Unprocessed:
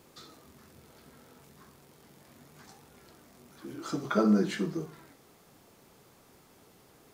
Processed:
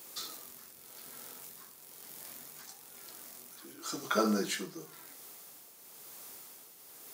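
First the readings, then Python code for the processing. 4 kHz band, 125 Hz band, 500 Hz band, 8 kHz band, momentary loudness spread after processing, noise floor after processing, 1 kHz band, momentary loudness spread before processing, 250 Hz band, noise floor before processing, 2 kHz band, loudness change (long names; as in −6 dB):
+5.0 dB, −9.5 dB, −3.5 dB, +9.5 dB, 18 LU, −55 dBFS, +0.5 dB, 20 LU, −7.5 dB, −60 dBFS, +0.5 dB, −9.5 dB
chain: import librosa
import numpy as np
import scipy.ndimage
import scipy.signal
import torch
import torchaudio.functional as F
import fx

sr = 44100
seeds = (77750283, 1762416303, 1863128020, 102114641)

y = fx.riaa(x, sr, side='recording')
y = fx.rider(y, sr, range_db=3, speed_s=2.0)
y = fx.tremolo_shape(y, sr, shape='triangle', hz=1.0, depth_pct=60)
y = F.gain(torch.from_numpy(y), 1.0).numpy()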